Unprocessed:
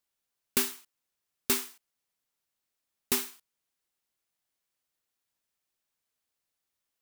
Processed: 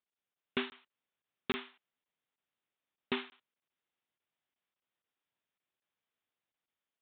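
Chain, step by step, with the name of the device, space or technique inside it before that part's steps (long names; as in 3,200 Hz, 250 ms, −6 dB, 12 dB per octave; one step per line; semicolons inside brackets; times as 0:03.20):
call with lost packets (high-pass filter 100 Hz; downsampling to 8,000 Hz; automatic gain control gain up to 3 dB; dropped packets)
level −4.5 dB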